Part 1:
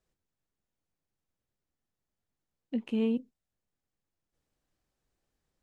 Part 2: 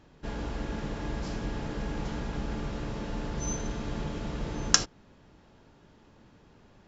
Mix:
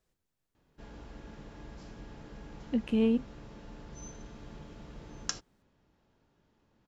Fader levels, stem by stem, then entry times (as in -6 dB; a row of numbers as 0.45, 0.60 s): +2.5, -13.5 dB; 0.00, 0.55 s